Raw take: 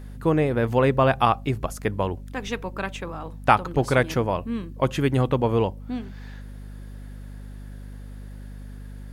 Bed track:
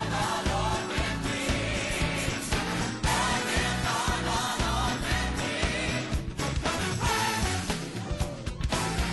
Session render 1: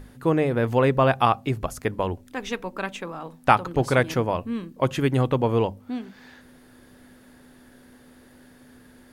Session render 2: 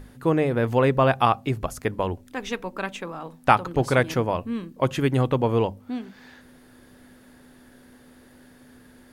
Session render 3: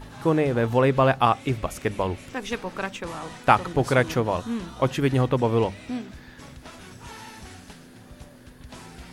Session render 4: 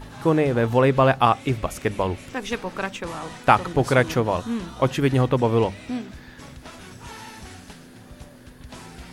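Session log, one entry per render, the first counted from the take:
notches 50/100/150/200 Hz
nothing audible
add bed track -15 dB
gain +2 dB; limiter -1 dBFS, peak gain reduction 1 dB

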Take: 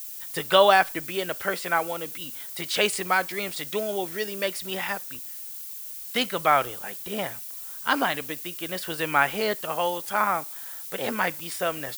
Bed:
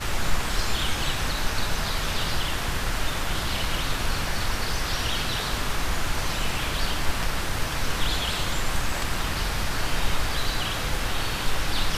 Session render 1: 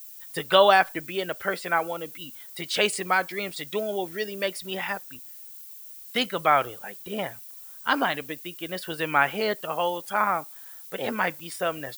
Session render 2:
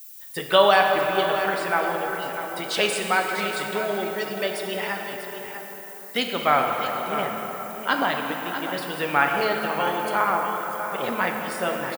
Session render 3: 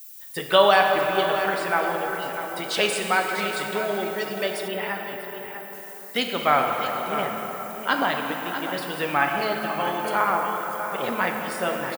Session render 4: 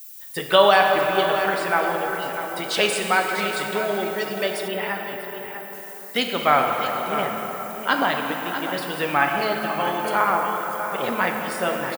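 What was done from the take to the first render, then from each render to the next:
denoiser 8 dB, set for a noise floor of -38 dBFS
echo 0.646 s -11 dB; plate-style reverb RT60 4.5 s, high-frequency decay 0.5×, DRR 1.5 dB
4.68–5.73 bell 6200 Hz -13.5 dB 0.86 oct; 9.14–10.04 notch comb 470 Hz
gain +2 dB; limiter -3 dBFS, peak gain reduction 1 dB

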